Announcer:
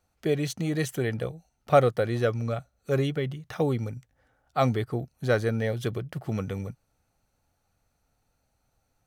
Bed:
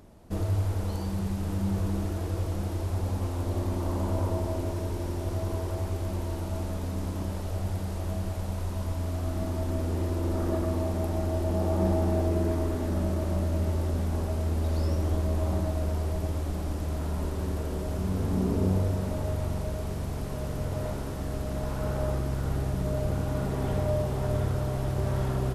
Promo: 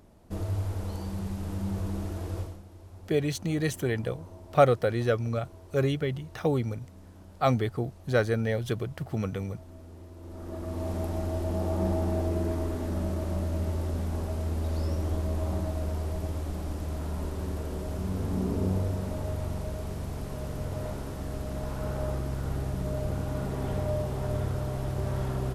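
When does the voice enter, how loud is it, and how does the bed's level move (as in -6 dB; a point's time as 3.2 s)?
2.85 s, -0.5 dB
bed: 2.4 s -3.5 dB
2.63 s -18 dB
10.14 s -18 dB
10.91 s -2.5 dB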